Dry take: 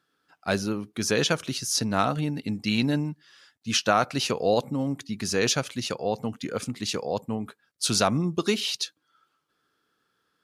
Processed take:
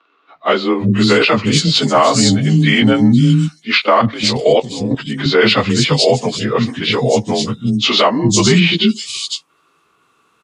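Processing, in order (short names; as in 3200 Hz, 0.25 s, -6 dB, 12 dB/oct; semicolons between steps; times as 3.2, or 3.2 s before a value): inharmonic rescaling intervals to 91%; 3.8–4.91 level quantiser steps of 13 dB; three bands offset in time mids, lows, highs 0.35/0.51 s, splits 280/4200 Hz; maximiser +20 dB; gain -1 dB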